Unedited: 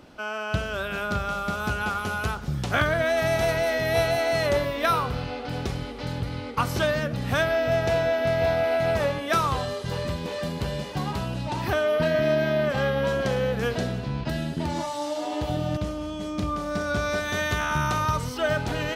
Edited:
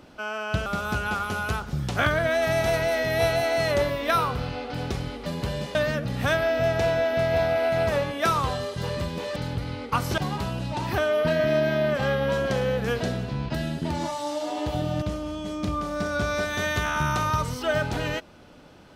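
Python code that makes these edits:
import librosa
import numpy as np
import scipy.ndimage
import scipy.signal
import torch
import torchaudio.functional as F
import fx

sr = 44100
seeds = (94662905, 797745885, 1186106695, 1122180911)

y = fx.edit(x, sr, fx.cut(start_s=0.66, length_s=0.75),
    fx.swap(start_s=6.01, length_s=0.82, other_s=10.44, other_length_s=0.49), tone=tone)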